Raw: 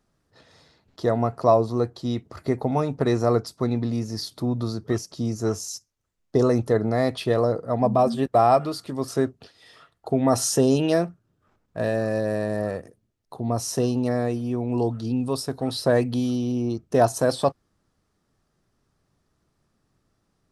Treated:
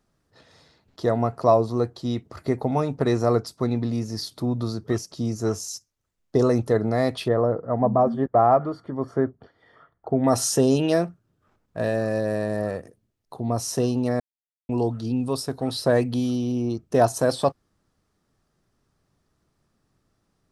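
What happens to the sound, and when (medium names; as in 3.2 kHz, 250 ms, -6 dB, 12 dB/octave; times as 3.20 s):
7.28–10.24 s: Savitzky-Golay filter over 41 samples
14.20–14.69 s: mute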